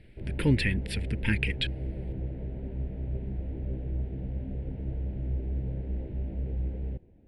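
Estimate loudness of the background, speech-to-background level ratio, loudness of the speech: -35.5 LUFS, 6.0 dB, -29.5 LUFS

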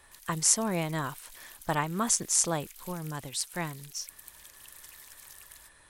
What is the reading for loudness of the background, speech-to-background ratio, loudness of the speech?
-48.0 LUFS, 19.0 dB, -29.0 LUFS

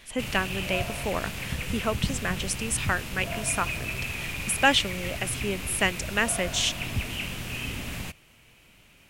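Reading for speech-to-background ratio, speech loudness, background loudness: 5.0 dB, -28.0 LUFS, -33.0 LUFS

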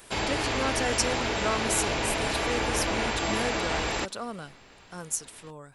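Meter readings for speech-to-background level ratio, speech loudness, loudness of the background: -4.5 dB, -32.5 LUFS, -28.0 LUFS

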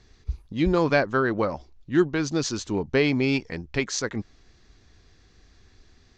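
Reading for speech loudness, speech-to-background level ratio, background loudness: -25.0 LUFS, 14.0 dB, -39.0 LUFS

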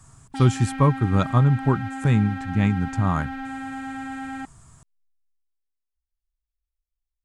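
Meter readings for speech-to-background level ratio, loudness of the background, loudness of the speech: 11.5 dB, -33.5 LUFS, -22.0 LUFS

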